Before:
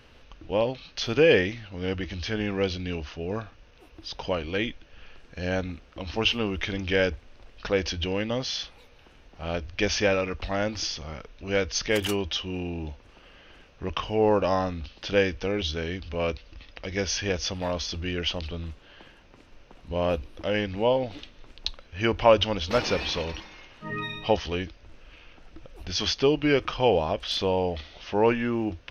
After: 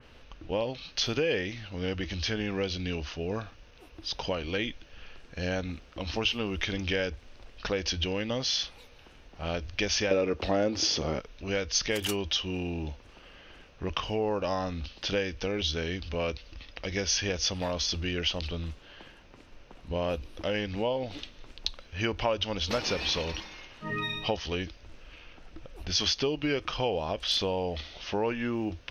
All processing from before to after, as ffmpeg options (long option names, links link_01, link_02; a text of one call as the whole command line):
ffmpeg -i in.wav -filter_complex "[0:a]asettb=1/sr,asplit=3[link_01][link_02][link_03];[link_01]atrim=end=10.114[link_04];[link_02]atrim=start=10.11:end=11.2,asetpts=PTS-STARTPTS,afade=type=in:duration=0.004:curve=qsin,afade=type=out:start_time=1.086:duration=0.004:curve=qsin,highpass=58,equalizer=frequency=380:width_type=o:width=2.1:gain=12.5,acontrast=38[link_05];[link_03]atrim=start=11.196[link_06];[link_04][link_05]acrossfade=duration=0.004:curve1=hsin:curve2=qsin[link_07];[link_07][link_06]acrossfade=duration=0.004:curve1=qsin:curve2=hsin,acompressor=threshold=-28dB:ratio=3,adynamicequalizer=threshold=0.00447:dfrequency=2900:dqfactor=0.7:tfrequency=2900:tqfactor=0.7:attack=5:release=100:ratio=0.375:range=2.5:mode=boostabove:tftype=highshelf" out.wav